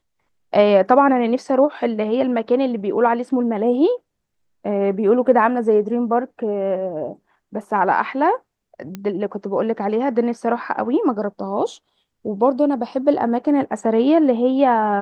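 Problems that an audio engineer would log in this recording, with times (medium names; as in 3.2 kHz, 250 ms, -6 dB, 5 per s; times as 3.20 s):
8.95 s: pop -16 dBFS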